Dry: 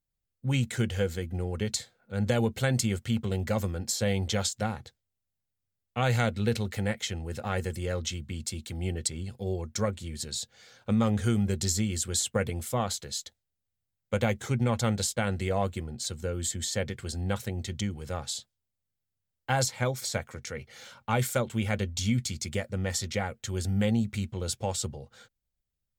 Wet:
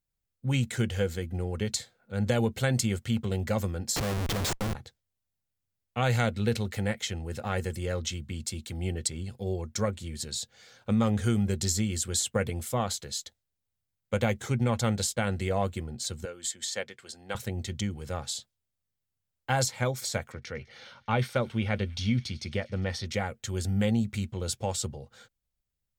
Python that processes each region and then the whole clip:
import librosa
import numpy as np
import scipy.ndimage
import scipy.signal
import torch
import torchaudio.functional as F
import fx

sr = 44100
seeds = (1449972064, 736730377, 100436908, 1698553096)

y = fx.chain(x, sr, fx.schmitt(flips_db=-32.0),
    fx.quant_companded(bits=8), at=(3.96, 4.75))
y = fx.chain(y, sr, fx.weighting(curve='A'),
    fx.upward_expand(threshold_db=-42.0, expansion=1.5), at=(16.25, 17.35))
y = fx.chain(y, sr, fx.savgol(points=15),
    fx.echo_wet_highpass(ms=101, feedback_pct=80, hz=2400.0, wet_db=-22), at=(20.32, 23.06))